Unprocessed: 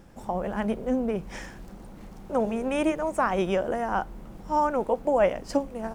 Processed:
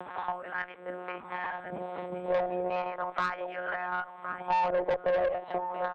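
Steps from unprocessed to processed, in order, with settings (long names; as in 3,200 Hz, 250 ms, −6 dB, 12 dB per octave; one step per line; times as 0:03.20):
spectral tilt −3.5 dB per octave
downward compressor 6 to 1, threshold −24 dBFS, peak gain reduction 11 dB
two-band tremolo in antiphase 2.3 Hz, depth 70%, crossover 590 Hz
one-pitch LPC vocoder at 8 kHz 180 Hz
auto-filter high-pass sine 0.35 Hz 530–1,600 Hz
on a send: single-tap delay 1,062 ms −17 dB
on the sum: tube saturation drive 27 dB, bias 0.3
multiband upward and downward compressor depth 70%
level +7 dB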